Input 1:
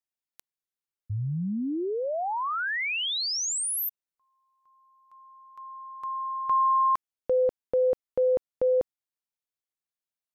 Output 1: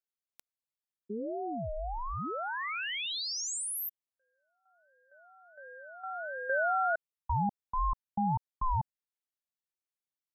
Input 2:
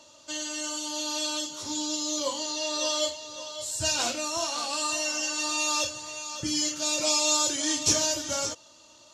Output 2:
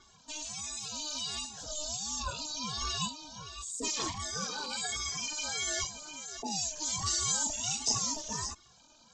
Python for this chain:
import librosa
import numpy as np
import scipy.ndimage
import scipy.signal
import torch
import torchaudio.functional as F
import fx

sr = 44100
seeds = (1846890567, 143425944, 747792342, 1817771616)

y = fx.envelope_sharpen(x, sr, power=2.0)
y = fx.ring_lfo(y, sr, carrier_hz=430.0, swing_pct=30, hz=1.4)
y = y * 10.0 ** (-3.5 / 20.0)